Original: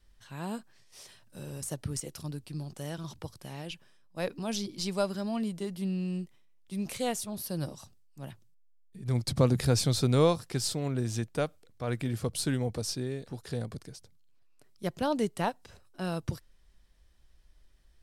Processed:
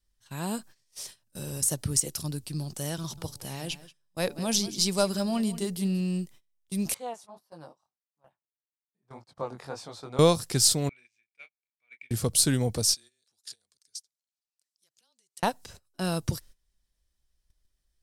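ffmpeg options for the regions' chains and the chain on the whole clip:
-filter_complex "[0:a]asettb=1/sr,asplit=3[a][b][c];[a]atrim=end=2.994[d];[b]atrim=start=2.99:end=6.01,asetpts=PTS-STARTPTS,afade=t=in:d=0.004:c=qsin,afade=t=out:st=3.016:d=0.004:c=qsin,bandreject=f=143.5:t=h:w=4,bandreject=f=287:t=h:w=4,bandreject=f=430.5:t=h:w=4,bandreject=f=574:t=h:w=4,bandreject=f=717.5:t=h:w=4,bandreject=f=861:t=h:w=4,aecho=1:1:183:0.168,atrim=end_sample=133182[e];[c]atrim=start=6.006[f];[d][e]acrossfade=d=0.004:c1=hsin:c2=qsin[g];[g][f]acrossfade=d=0.004:c1=qsin:c2=hsin,asettb=1/sr,asplit=3[h][i][j];[h]atrim=end=6.944[k];[i]atrim=start=6.94:end=10.19,asetpts=PTS-STARTPTS,afade=t=in:d=0.004:c=qsin,afade=t=out:st=3.246:d=0.004:c=qsin,bandpass=f=920:t=q:w=2.1,flanger=delay=18:depth=5.6:speed=1.7[l];[j]atrim=start=10.186[m];[k][l]acrossfade=d=0.004:c1=hsin:c2=qsin[n];[n][m]acrossfade=d=0.004:c1=qsin:c2=hsin,asettb=1/sr,asplit=3[o][p][q];[o]atrim=end=10.894[r];[p]atrim=start=10.89:end=12.11,asetpts=PTS-STARTPTS,afade=t=in:d=0.004:c=qsin,afade=t=out:st=1.216:d=0.004:c=qsin,bandpass=f=2.3k:t=q:w=19,asplit=2[s][t];[t]adelay=29,volume=-8dB[u];[s][u]amix=inputs=2:normalize=0,atrim=end_sample=53802[v];[q]atrim=start=12.106[w];[r][v]acrossfade=d=0.004:c1=hsin:c2=qsin[x];[x][w]acrossfade=d=0.004:c1=qsin:c2=hsin,asettb=1/sr,asplit=3[y][z][aa];[y]atrim=end=12.944[ab];[z]atrim=start=12.94:end=15.43,asetpts=PTS-STARTPTS,afade=t=in:d=0.004:c=qsin,afade=t=out:st=2.486:d=0.004:c=qsin,acompressor=threshold=-41dB:ratio=6:attack=3.2:release=140:knee=1:detection=peak,bandpass=f=5.9k:t=q:w=0.9,afreqshift=-23[ac];[aa]atrim=start=15.426[ad];[ab][ac]acrossfade=d=0.004:c1=hsin:c2=qsin[ae];[ae][ad]acrossfade=d=0.004:c1=qsin:c2=hsin,agate=range=-18dB:threshold=-52dB:ratio=16:detection=peak,bass=f=250:g=1,treble=f=4k:g=10,volume=3.5dB"

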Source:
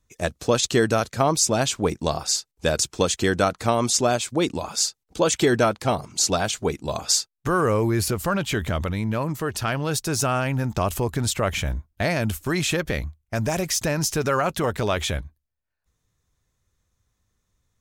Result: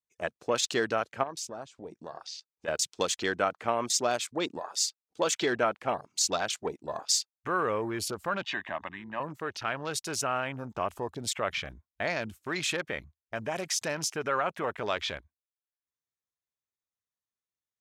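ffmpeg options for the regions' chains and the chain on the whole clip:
-filter_complex "[0:a]asettb=1/sr,asplit=3[a][b][c];[a]atrim=end=1.234[d];[b]atrim=start=1.23:end=2.68,asetpts=PTS-STARTPTS,afade=t=in:d=0.004:c=qsin,afade=t=out:st=1.446:d=0.004:c=qsin,lowpass=9.3k,acompressor=threshold=-32dB:ratio=2.5:attack=3.2:release=140:knee=1:detection=peak[e];[c]atrim=start=2.676[f];[d][e]acrossfade=d=0.004:c1=hsin:c2=qsin[g];[g][f]acrossfade=d=0.004:c1=qsin:c2=hsin,asettb=1/sr,asplit=3[h][i][j];[h]atrim=end=8.424[k];[i]atrim=start=8.42:end=9.2,asetpts=PTS-STARTPTS,afade=t=in:d=0.004:c=qsin,afade=t=out:st=0.776:d=0.004:c=qsin,acrossover=split=250 4900:gain=0.158 1 0.141[l][m][n];[l][m][n]amix=inputs=3:normalize=0,aecho=1:1:1.1:0.91,atrim=end_sample=34398[o];[j]atrim=start=9.196[p];[k][o]acrossfade=d=0.004:c1=hsin:c2=qsin[q];[q][p]acrossfade=d=0.004:c1=qsin:c2=hsin,highpass=f=620:p=1,afwtdn=0.0158,highshelf=f=11k:g=-9,volume=-4dB"

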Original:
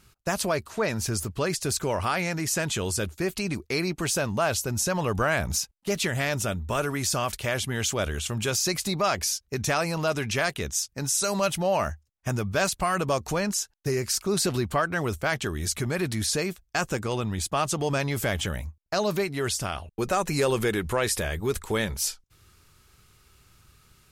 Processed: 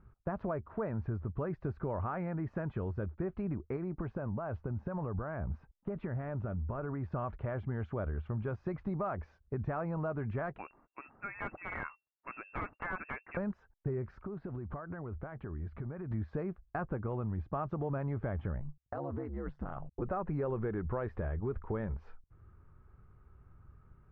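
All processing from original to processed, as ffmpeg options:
-filter_complex "[0:a]asettb=1/sr,asplit=3[a][b][c];[a]atrim=end=3.764[d];[b]atrim=start=3.76:end=7.12,asetpts=PTS-STARTPTS,afade=t=in:d=0.004:c=qsin,afade=t=out:st=3.356:d=0.004:c=qsin,lowpass=f=3.2k:p=1,acompressor=threshold=-27dB:ratio=6:attack=3.2:release=140:knee=1:detection=peak[e];[c]atrim=start=7.116[f];[d][e]acrossfade=d=0.004:c1=hsin:c2=qsin[g];[g][f]acrossfade=d=0.004:c1=qsin:c2=hsin,asettb=1/sr,asplit=3[h][i][j];[h]atrim=end=10.584[k];[i]atrim=start=10.58:end=13.37,asetpts=PTS-STARTPTS,afade=t=in:d=0.004:c=qsin,afade=t=out:st=2.786:d=0.004:c=qsin,lowpass=f=2.4k:t=q:w=0.5098,lowpass=f=2.4k:t=q:w=0.6013,lowpass=f=2.4k:t=q:w=0.9,lowpass=f=2.4k:t=q:w=2.563,afreqshift=-2800,aeval=exprs='(mod(5.96*val(0)+1,2)-1)/5.96':c=same[l];[j]atrim=start=13.366[m];[k][l]acrossfade=d=0.004:c1=hsin:c2=qsin[n];[n][m]acrossfade=d=0.004:c1=qsin:c2=hsin,asettb=1/sr,asplit=3[o][p][q];[o]atrim=end=14.204[r];[p]atrim=start=14.2:end=16.11,asetpts=PTS-STARTPTS,afade=t=in:d=0.004:c=qsin,afade=t=out:st=1.906:d=0.004:c=qsin,lowpass=f=4.6k:w=0.5412,lowpass=f=4.6k:w=1.3066,acompressor=threshold=-34dB:ratio=12:attack=3.2:release=140:knee=1:detection=peak[s];[q]atrim=start=16.106[t];[r][s]acrossfade=d=0.004:c1=hsin:c2=qsin[u];[u][t]acrossfade=d=0.004:c1=qsin:c2=hsin,asettb=1/sr,asplit=3[v][w][x];[v]atrim=end=18.594[y];[w]atrim=start=18.59:end=20.02,asetpts=PTS-STARTPTS,afade=t=in:d=0.004:c=qsin,afade=t=out:st=1.426:d=0.004:c=qsin,asuperstop=centerf=2400:order=4:qfactor=7.3,acompressor=threshold=-27dB:ratio=4:attack=3.2:release=140:knee=1:detection=peak,aeval=exprs='val(0)*sin(2*PI*69*n/s)':c=same[z];[x]atrim=start=20.016[aa];[y][z]acrossfade=d=0.004:c1=hsin:c2=qsin[ab];[ab][aa]acrossfade=d=0.004:c1=qsin:c2=hsin,lowpass=f=1.4k:w=0.5412,lowpass=f=1.4k:w=1.3066,lowshelf=f=160:g=8,acompressor=threshold=-30dB:ratio=2.5,volume=-4.5dB"

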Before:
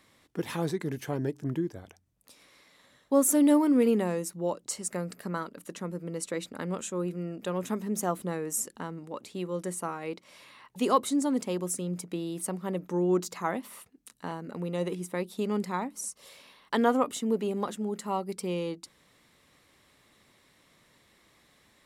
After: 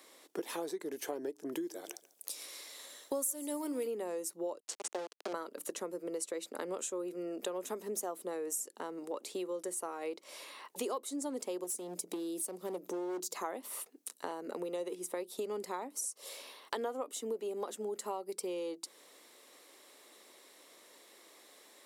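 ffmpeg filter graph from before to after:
-filter_complex "[0:a]asettb=1/sr,asplit=3[a][b][c];[a]atrim=end=1.524[d];[b]atrim=start=1.52:end=3.87,asetpts=PTS-STARTPTS,afade=t=in:d=0.004:c=qsin,afade=t=out:st=2.346:d=0.004:c=qsin,highshelf=f=2.6k:g=10.5,aecho=1:1:142|284:0.0944|0.0283,atrim=end_sample=103635[e];[c]atrim=start=3.866[f];[d][e]acrossfade=d=0.004:c1=hsin:c2=qsin[g];[g][f]acrossfade=d=0.004:c1=qsin:c2=hsin,asettb=1/sr,asplit=3[h][i][j];[h]atrim=end=4.604[k];[i]atrim=start=4.6:end=5.33,asetpts=PTS-STARTPTS,afade=t=in:d=0.004:c=qsin,afade=t=out:st=0.726:d=0.004:c=qsin,bandreject=f=2.2k:w=7,aeval=exprs='val(0)*gte(abs(val(0)),0.0237)':c=same,highpass=190,lowpass=5.1k[l];[j]atrim=start=5.326[m];[k][l]acrossfade=d=0.004:c1=hsin:c2=qsin[n];[n][m]acrossfade=d=0.004:c1=qsin:c2=hsin,asettb=1/sr,asplit=3[o][p][q];[o]atrim=end=11.644[r];[p]atrim=start=11.64:end=13.35,asetpts=PTS-STARTPTS,afade=t=in:d=0.004:c=qsin,afade=t=out:st=1.706:d=0.004:c=qsin,equalizer=f=1.4k:w=0.63:g=-10,acompressor=mode=upward:threshold=-35dB:ratio=2.5:attack=3.2:release=140:knee=2.83:detection=peak,asoftclip=type=hard:threshold=-30.5dB[s];[q]atrim=start=13.346[t];[r][s]acrossfade=d=0.004:c1=hsin:c2=qsin[u];[u][t]acrossfade=d=0.004:c1=qsin:c2=hsin,highpass=f=360:w=0.5412,highpass=f=360:w=1.3066,equalizer=f=1.8k:t=o:w=2.7:g=-9,acompressor=threshold=-46dB:ratio=6,volume=10dB"

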